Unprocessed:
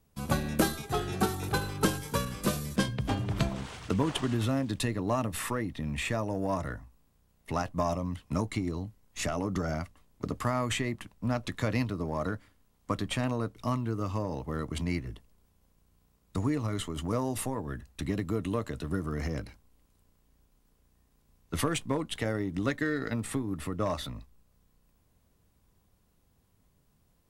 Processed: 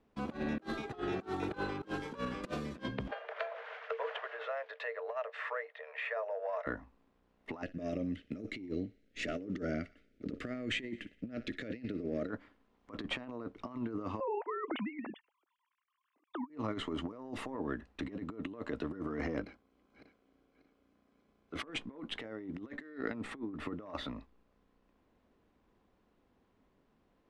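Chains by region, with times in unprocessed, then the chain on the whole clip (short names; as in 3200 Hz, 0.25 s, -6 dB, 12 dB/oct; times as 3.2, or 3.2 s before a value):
3.11–6.67 rippled Chebyshev high-pass 440 Hz, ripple 9 dB + air absorption 110 m + three-band squash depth 40%
7.62–12.3 Butterworth band-stop 950 Hz, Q 0.86 + thinning echo 60 ms, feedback 58%, high-pass 620 Hz, level -19 dB
14.2–16.5 sine-wave speech + tilt shelf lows -3.5 dB
19.45–21.63 regenerating reverse delay 0.295 s, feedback 50%, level -7.5 dB + notch comb 910 Hz
whole clip: LPF 2600 Hz 12 dB/oct; resonant low shelf 190 Hz -10 dB, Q 1.5; negative-ratio compressor -36 dBFS, ratio -0.5; gain -2 dB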